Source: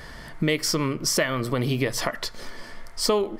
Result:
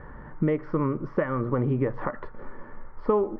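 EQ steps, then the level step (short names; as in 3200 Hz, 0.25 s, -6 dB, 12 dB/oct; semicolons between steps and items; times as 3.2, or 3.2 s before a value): Butterworth band-stop 670 Hz, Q 6.7; LPF 1400 Hz 24 dB/oct; 0.0 dB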